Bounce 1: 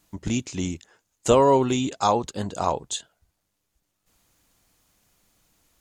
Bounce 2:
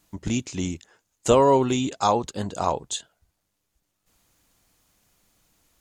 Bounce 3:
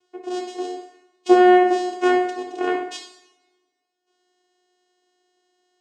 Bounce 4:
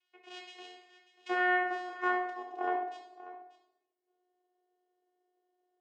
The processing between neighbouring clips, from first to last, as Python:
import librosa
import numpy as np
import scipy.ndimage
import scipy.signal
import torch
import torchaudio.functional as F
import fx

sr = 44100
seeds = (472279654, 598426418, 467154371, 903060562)

y1 = x
y2 = fx.vocoder(y1, sr, bands=4, carrier='saw', carrier_hz=362.0)
y2 = fx.rev_double_slope(y2, sr, seeds[0], early_s=0.7, late_s=1.8, knee_db=-23, drr_db=0.5)
y2 = F.gain(torch.from_numpy(y2), 3.0).numpy()
y3 = fx.filter_sweep_bandpass(y2, sr, from_hz=2500.0, to_hz=550.0, start_s=0.78, end_s=3.5, q=2.4)
y3 = y3 + 10.0 ** (-16.0 / 20.0) * np.pad(y3, (int(589 * sr / 1000.0), 0))[:len(y3)]
y3 = F.gain(torch.from_numpy(y3), -2.0).numpy()